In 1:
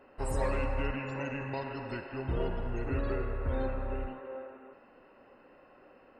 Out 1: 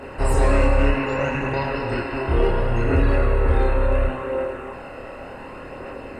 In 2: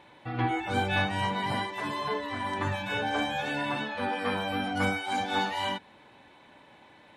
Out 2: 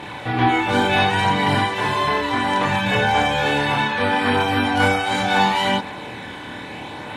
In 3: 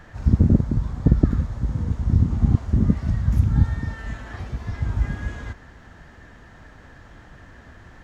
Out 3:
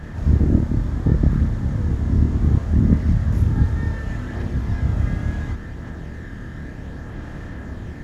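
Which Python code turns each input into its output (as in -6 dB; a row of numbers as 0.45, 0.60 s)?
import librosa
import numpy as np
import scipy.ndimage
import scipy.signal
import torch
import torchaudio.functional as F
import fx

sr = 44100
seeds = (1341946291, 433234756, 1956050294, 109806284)

y = fx.bin_compress(x, sr, power=0.6)
y = fx.chorus_voices(y, sr, voices=2, hz=0.34, base_ms=27, depth_ms=1.7, mix_pct=50)
y = y * 10.0 ** (-20 / 20.0) / np.sqrt(np.mean(np.square(y)))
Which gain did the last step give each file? +12.5, +11.0, +1.0 dB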